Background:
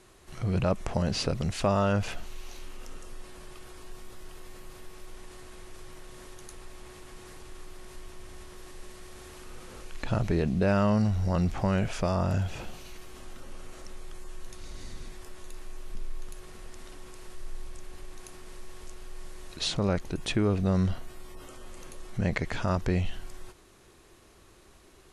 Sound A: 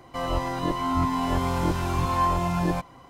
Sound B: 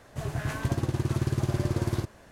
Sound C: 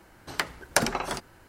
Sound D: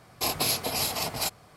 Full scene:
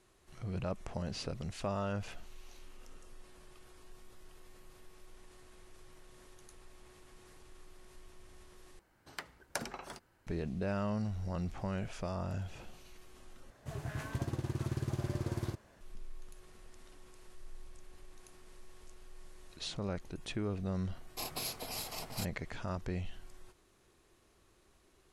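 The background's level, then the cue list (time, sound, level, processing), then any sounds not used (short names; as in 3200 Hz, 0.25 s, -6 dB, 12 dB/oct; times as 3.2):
background -11 dB
8.79 replace with C -15.5 dB
13.5 replace with B -9 dB
20.96 add D -13 dB
not used: A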